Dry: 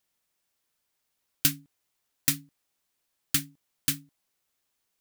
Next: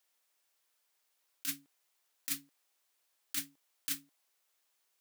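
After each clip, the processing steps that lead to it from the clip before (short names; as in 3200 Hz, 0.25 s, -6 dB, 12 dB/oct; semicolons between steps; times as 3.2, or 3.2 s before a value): HPF 450 Hz 12 dB/oct; negative-ratio compressor -30 dBFS, ratio -1; gain -4.5 dB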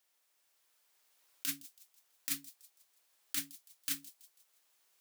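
recorder AGC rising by 5.1 dB/s; thin delay 0.164 s, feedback 43%, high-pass 4100 Hz, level -17 dB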